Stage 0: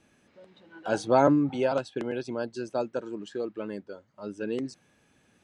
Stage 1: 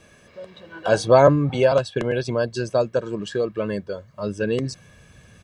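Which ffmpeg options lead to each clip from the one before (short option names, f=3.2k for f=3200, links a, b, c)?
-filter_complex "[0:a]aecho=1:1:1.8:0.54,asubboost=boost=3:cutoff=200,asplit=2[a][b];[b]acompressor=threshold=-34dB:ratio=6,volume=0dB[c];[a][c]amix=inputs=2:normalize=0,volume=5.5dB"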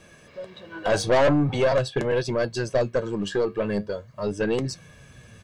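-af "flanger=delay=5.3:depth=6:regen=69:speed=0.43:shape=triangular,aeval=exprs='(tanh(11.2*val(0)+0.3)-tanh(0.3))/11.2':c=same,volume=6dB"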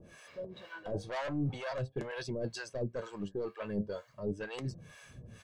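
-filter_complex "[0:a]areverse,acompressor=threshold=-29dB:ratio=10,areverse,acrossover=split=610[a][b];[a]aeval=exprs='val(0)*(1-1/2+1/2*cos(2*PI*2.1*n/s))':c=same[c];[b]aeval=exprs='val(0)*(1-1/2-1/2*cos(2*PI*2.1*n/s))':c=same[d];[c][d]amix=inputs=2:normalize=0"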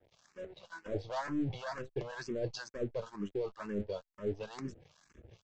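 -filter_complex "[0:a]aresample=16000,aeval=exprs='sgn(val(0))*max(abs(val(0))-0.00224,0)':c=same,aresample=44100,asplit=2[a][b];[b]afreqshift=2.1[c];[a][c]amix=inputs=2:normalize=1,volume=3dB"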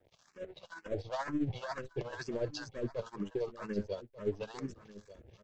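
-af "tremolo=f=14:d=0.59,aecho=1:1:1189:0.15,volume=3dB"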